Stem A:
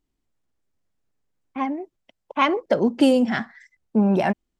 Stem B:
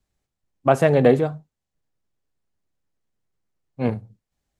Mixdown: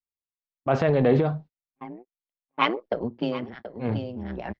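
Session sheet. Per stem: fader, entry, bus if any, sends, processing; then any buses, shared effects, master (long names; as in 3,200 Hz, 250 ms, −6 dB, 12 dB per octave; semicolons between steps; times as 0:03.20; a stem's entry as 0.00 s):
−0.5 dB, 0.20 s, no send, echo send −16 dB, amplitude modulation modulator 120 Hz, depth 75%; multiband upward and downward expander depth 70%; automatic ducking −17 dB, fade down 1.15 s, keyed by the second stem
−4.5 dB, 0.00 s, no send, no echo send, transient designer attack −4 dB, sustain +9 dB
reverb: not used
echo: single-tap delay 729 ms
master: inverse Chebyshev low-pass filter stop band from 8,600 Hz, stop band 40 dB; noise gate −41 dBFS, range −30 dB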